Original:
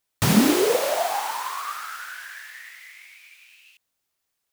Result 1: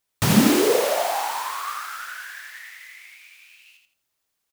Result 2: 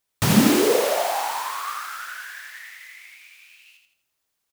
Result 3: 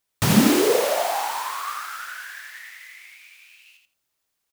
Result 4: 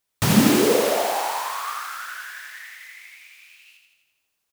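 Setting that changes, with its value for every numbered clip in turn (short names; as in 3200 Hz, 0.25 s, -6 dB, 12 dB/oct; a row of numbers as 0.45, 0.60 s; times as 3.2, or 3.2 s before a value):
feedback echo, feedback: 26, 38, 16, 62%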